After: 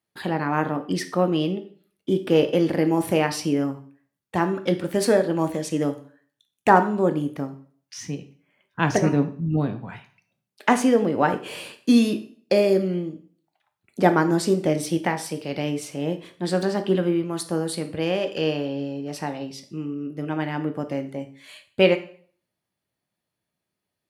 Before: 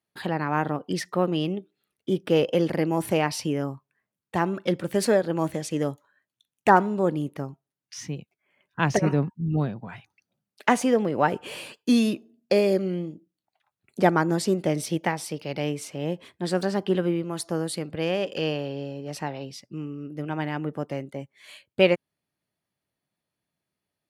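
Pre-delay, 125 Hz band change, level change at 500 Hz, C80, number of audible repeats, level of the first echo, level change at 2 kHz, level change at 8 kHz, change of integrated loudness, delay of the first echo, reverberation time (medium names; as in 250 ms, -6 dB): 5 ms, +1.5 dB, +2.5 dB, 17.0 dB, no echo, no echo, +1.5 dB, +1.5 dB, +2.5 dB, no echo, 0.50 s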